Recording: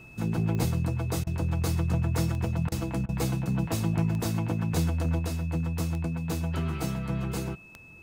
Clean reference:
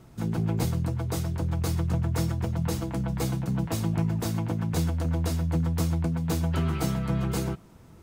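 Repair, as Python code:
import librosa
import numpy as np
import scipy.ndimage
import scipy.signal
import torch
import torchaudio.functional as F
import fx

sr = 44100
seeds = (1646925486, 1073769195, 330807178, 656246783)

y = fx.fix_declick_ar(x, sr, threshold=10.0)
y = fx.notch(y, sr, hz=2600.0, q=30.0)
y = fx.fix_interpolate(y, sr, at_s=(1.24, 2.69, 3.06), length_ms=27.0)
y = fx.fix_level(y, sr, at_s=5.19, step_db=3.5)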